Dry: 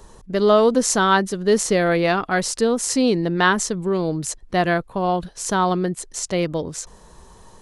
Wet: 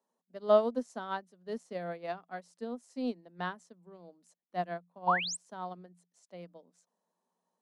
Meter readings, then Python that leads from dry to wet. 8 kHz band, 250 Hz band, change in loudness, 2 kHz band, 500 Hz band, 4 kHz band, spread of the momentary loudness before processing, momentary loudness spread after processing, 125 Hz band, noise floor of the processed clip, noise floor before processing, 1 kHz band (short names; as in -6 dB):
-23.5 dB, -19.0 dB, -14.5 dB, -17.5 dB, -14.5 dB, -16.5 dB, 9 LU, 23 LU, -22.0 dB, under -85 dBFS, -48 dBFS, -14.0 dB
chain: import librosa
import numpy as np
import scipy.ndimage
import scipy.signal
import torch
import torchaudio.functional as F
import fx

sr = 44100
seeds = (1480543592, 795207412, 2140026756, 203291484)

y = fx.spec_paint(x, sr, seeds[0], shape='rise', start_s=5.07, length_s=0.3, low_hz=830.0, high_hz=9000.0, level_db=-12.0)
y = scipy.signal.sosfilt(scipy.signal.cheby1(6, 9, 170.0, 'highpass', fs=sr, output='sos'), y)
y = fx.upward_expand(y, sr, threshold_db=-30.0, expansion=2.5)
y = y * 10.0 ** (-5.0 / 20.0)